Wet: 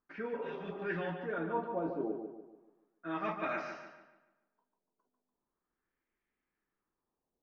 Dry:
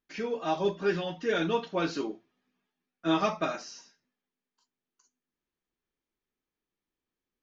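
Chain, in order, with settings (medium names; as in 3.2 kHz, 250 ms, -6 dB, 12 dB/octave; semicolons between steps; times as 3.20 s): hum notches 50/100/150 Hz; reverse; compression 6:1, threshold -36 dBFS, peak gain reduction 14.5 dB; reverse; LFO low-pass sine 0.36 Hz 630–2100 Hz; on a send: filtered feedback delay 145 ms, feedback 42%, low-pass 4 kHz, level -6.5 dB; on the sum: spectral replace 0.40–0.76 s, 240–1400 Hz both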